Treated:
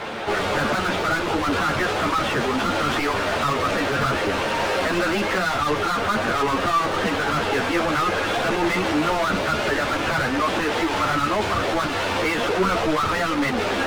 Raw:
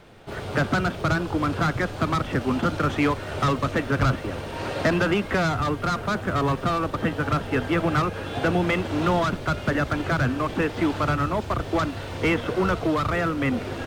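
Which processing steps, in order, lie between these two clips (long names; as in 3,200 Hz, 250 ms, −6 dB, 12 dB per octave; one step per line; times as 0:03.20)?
mid-hump overdrive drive 38 dB, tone 2,600 Hz, clips at −10 dBFS
string-ensemble chorus
level −2 dB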